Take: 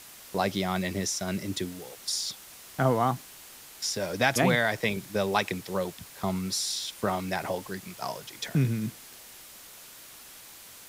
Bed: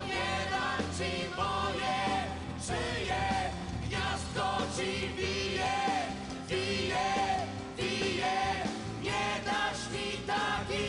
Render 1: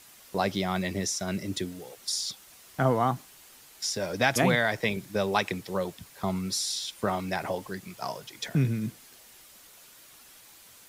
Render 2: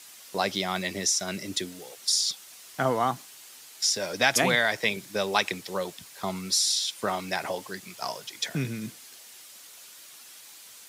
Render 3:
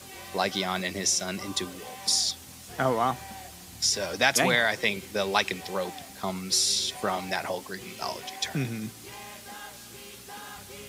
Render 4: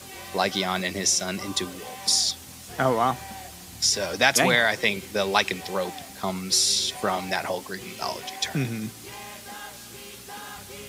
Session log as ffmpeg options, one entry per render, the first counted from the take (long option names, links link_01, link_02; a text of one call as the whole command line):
ffmpeg -i in.wav -af "afftdn=noise_reduction=6:noise_floor=-49" out.wav
ffmpeg -i in.wav -af "highpass=frequency=260:poles=1,equalizer=frequency=5800:width=0.37:gain=6.5" out.wav
ffmpeg -i in.wav -i bed.wav -filter_complex "[1:a]volume=-12dB[link_01];[0:a][link_01]amix=inputs=2:normalize=0" out.wav
ffmpeg -i in.wav -af "volume=3dB" out.wav